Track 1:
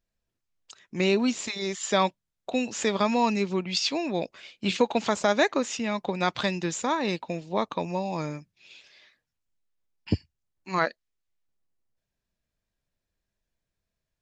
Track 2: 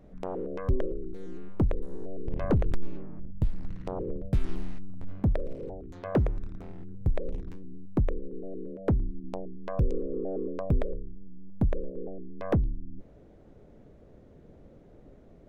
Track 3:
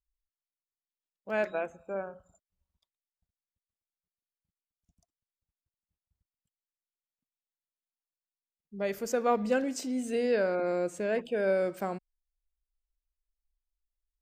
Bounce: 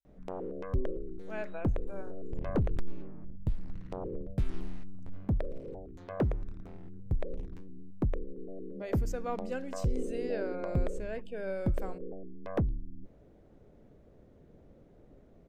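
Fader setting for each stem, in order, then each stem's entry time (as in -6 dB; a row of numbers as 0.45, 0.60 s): off, -4.5 dB, -9.5 dB; off, 0.05 s, 0.00 s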